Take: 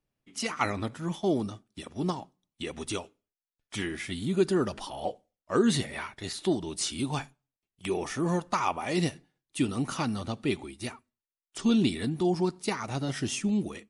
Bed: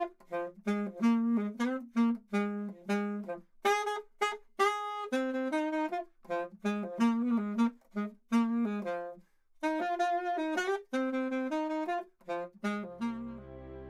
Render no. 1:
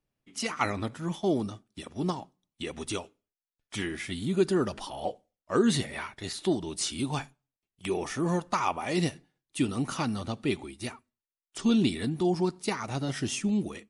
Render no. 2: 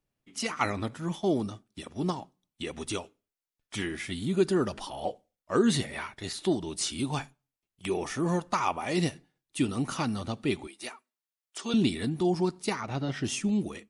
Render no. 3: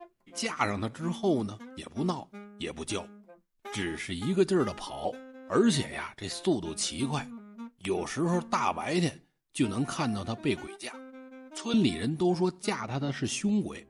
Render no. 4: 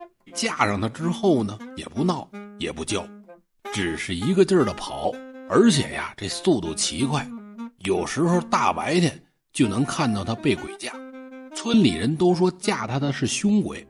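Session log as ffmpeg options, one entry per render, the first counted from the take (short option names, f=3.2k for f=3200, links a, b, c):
-af anull
-filter_complex "[0:a]asettb=1/sr,asplit=3[a][b][c];[a]atrim=end=10.674[d];[b]atrim=start=10.67:end=11.74,asetpts=PTS-STARTPTS,afade=t=in:d=0.004:c=qsin,afade=t=out:st=1.066:d=0.004:c=qsin,highpass=460[e];[c]atrim=start=11.736[f];[d][e]acrossfade=d=0.004:c1=hsin:c2=qsin[g];[g][f]acrossfade=d=0.004:c1=qsin:c2=hsin,asplit=3[h][i][j];[h]afade=t=out:st=12.8:d=0.02[k];[i]lowpass=4k,afade=t=in:st=12.8:d=0.02,afade=t=out:st=13.23:d=0.02[l];[j]afade=t=in:st=13.23:d=0.02[m];[k][l][m]amix=inputs=3:normalize=0"
-filter_complex "[1:a]volume=-14.5dB[a];[0:a][a]amix=inputs=2:normalize=0"
-af "volume=7.5dB"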